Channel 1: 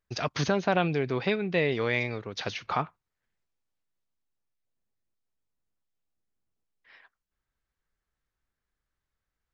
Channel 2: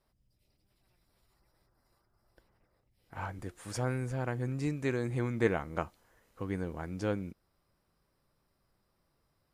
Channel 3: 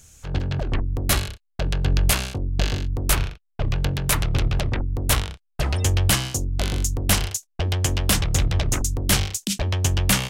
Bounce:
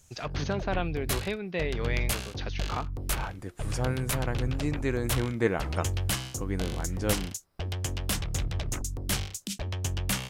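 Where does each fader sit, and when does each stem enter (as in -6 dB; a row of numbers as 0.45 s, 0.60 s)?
-5.5 dB, +2.5 dB, -10.0 dB; 0.00 s, 0.00 s, 0.00 s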